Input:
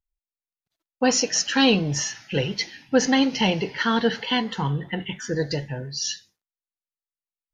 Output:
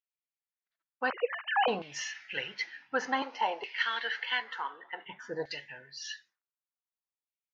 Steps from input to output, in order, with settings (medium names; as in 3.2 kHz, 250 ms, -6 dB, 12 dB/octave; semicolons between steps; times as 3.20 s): 1.10–1.68 s: formants replaced by sine waves; 3.22–5.06 s: Bessel high-pass 440 Hz, order 8; LFO band-pass saw down 0.55 Hz 820–2700 Hz; trim +1 dB